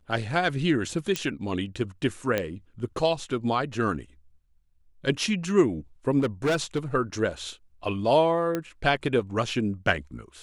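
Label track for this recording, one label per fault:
1.160000	1.160000	click −12 dBFS
2.380000	2.380000	click −12 dBFS
6.190000	6.790000	clipping −20 dBFS
8.550000	8.550000	click −14 dBFS

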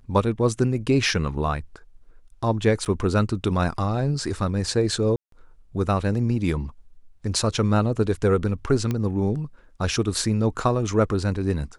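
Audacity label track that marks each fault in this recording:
2.850000	2.860000	drop-out 7.7 ms
5.160000	5.320000	drop-out 163 ms
8.910000	8.910000	click −13 dBFS

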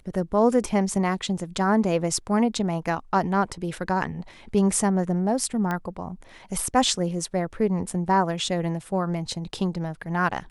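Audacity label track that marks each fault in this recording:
5.710000	5.710000	click −15 dBFS

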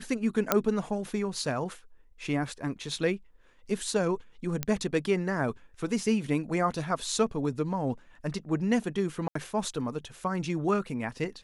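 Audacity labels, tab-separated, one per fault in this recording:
0.520000	0.520000	click −6 dBFS
4.630000	4.630000	click −12 dBFS
9.280000	9.350000	drop-out 74 ms

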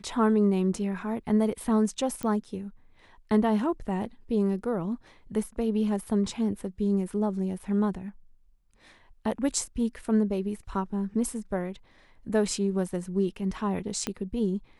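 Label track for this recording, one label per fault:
2.230000	2.230000	click −18 dBFS
14.070000	14.070000	click −14 dBFS

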